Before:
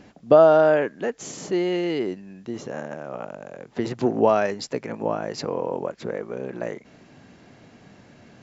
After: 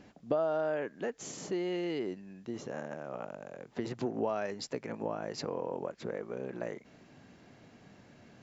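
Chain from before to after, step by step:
downward compressor 2.5 to 1, threshold −25 dBFS, peak gain reduction 10.5 dB
level −7 dB

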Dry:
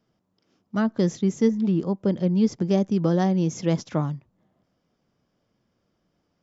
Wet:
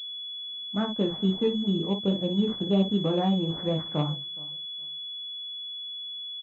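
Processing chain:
parametric band 830 Hz +2.5 dB
ambience of single reflections 20 ms −3.5 dB, 57 ms −6.5 dB
pitch vibrato 5.2 Hz 39 cents
repeating echo 419 ms, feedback 21%, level −23 dB
switching amplifier with a slow clock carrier 3,400 Hz
level −6 dB

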